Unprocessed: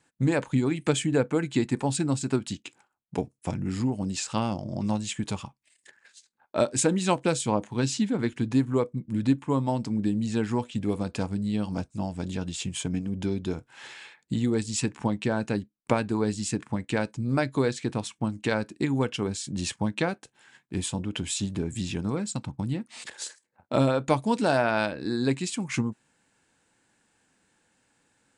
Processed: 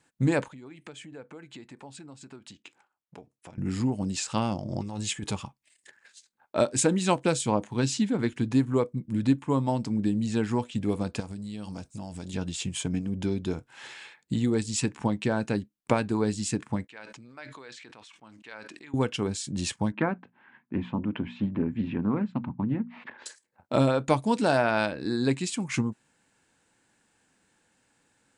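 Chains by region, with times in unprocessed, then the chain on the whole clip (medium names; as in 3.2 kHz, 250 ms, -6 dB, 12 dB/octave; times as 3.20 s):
0.48–3.58 s: low-pass 3 kHz 6 dB/octave + compression 3:1, threshold -42 dBFS + bass shelf 300 Hz -10 dB
4.70–5.32 s: compressor with a negative ratio -31 dBFS + comb 2.4 ms, depth 34%
11.20–12.34 s: treble shelf 3.5 kHz +9 dB + compression, threshold -34 dBFS
16.87–18.94 s: low-pass 2.1 kHz + differentiator + decay stretcher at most 22 dB/s
19.92–23.26 s: cabinet simulation 100–2300 Hz, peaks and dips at 240 Hz +10 dB, 470 Hz -4 dB, 1 kHz +5 dB + hum notches 60/120/180/240 Hz + loudspeaker Doppler distortion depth 0.15 ms
whole clip: none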